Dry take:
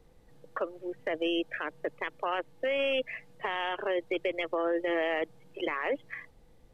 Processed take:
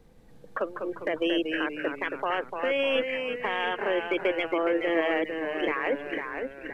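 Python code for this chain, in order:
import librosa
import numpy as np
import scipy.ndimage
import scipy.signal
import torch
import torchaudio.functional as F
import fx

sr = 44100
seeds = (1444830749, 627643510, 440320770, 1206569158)

y = fx.small_body(x, sr, hz=(210.0, 1600.0, 2300.0), ring_ms=45, db=7)
y = fx.echo_pitch(y, sr, ms=164, semitones=-1, count=3, db_per_echo=-6.0)
y = F.gain(torch.from_numpy(y), 2.5).numpy()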